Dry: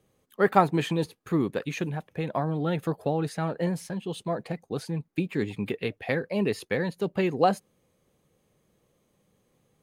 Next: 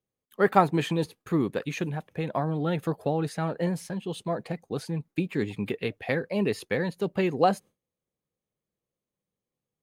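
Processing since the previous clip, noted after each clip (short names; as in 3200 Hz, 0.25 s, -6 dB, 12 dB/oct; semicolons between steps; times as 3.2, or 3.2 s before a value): gate with hold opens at -54 dBFS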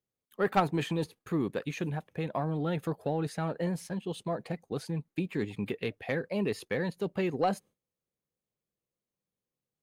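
in parallel at -0.5 dB: level quantiser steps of 16 dB; on the sum: soft clip -9 dBFS, distortion -16 dB; gain -7 dB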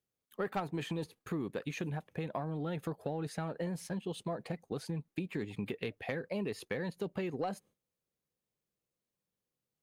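compressor 4:1, threshold -34 dBFS, peak gain reduction 12 dB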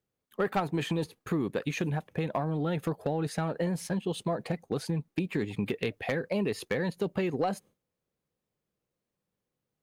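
overloaded stage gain 26.5 dB; mismatched tape noise reduction decoder only; gain +7 dB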